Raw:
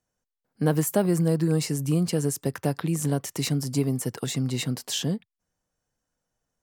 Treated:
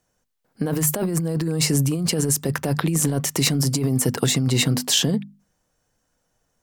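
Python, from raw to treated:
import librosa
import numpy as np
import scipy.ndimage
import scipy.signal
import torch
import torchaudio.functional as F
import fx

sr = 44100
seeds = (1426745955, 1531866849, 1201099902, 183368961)

y = fx.hum_notches(x, sr, base_hz=50, count=5)
y = fx.over_compress(y, sr, threshold_db=-28.0, ratio=-1.0)
y = F.gain(torch.from_numpy(y), 7.5).numpy()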